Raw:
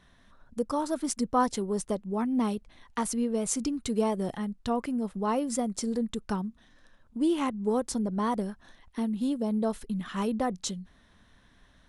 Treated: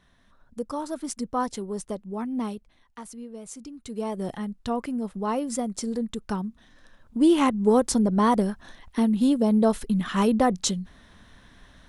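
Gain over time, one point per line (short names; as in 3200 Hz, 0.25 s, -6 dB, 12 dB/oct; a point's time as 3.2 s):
2.45 s -2 dB
2.98 s -11 dB
3.69 s -11 dB
4.26 s +1 dB
6.21 s +1 dB
7.38 s +8 dB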